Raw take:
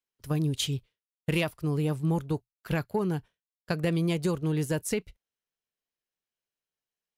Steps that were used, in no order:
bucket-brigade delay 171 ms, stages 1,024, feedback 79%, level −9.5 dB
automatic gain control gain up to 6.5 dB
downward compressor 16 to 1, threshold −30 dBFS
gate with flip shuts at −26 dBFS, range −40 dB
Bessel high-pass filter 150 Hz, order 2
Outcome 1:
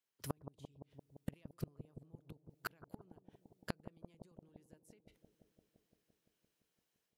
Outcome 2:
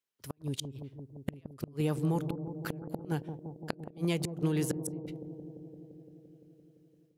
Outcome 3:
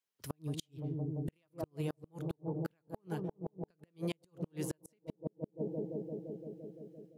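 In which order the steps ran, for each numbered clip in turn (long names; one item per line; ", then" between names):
Bessel high-pass filter, then downward compressor, then automatic gain control, then gate with flip, then bucket-brigade delay
downward compressor, then Bessel high-pass filter, then gate with flip, then bucket-brigade delay, then automatic gain control
bucket-brigade delay, then automatic gain control, then downward compressor, then Bessel high-pass filter, then gate with flip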